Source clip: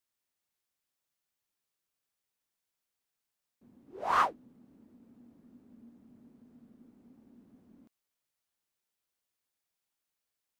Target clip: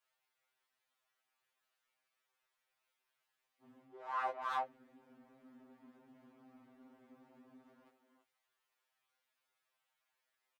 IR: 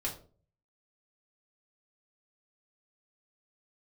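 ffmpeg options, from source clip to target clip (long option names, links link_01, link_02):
-filter_complex "[0:a]acrossover=split=520 3200:gain=0.141 1 0.251[link_01][link_02][link_03];[link_01][link_02][link_03]amix=inputs=3:normalize=0,asplit=2[link_04][link_05];[link_05]adelay=330,highpass=300,lowpass=3400,asoftclip=type=hard:threshold=-23dB,volume=-7dB[link_06];[link_04][link_06]amix=inputs=2:normalize=0,areverse,acompressor=threshold=-43dB:ratio=12,areverse,flanger=delay=16:depth=7:speed=2.7,afftfilt=real='re*2.45*eq(mod(b,6),0)':imag='im*2.45*eq(mod(b,6),0)':win_size=2048:overlap=0.75,volume=13.5dB"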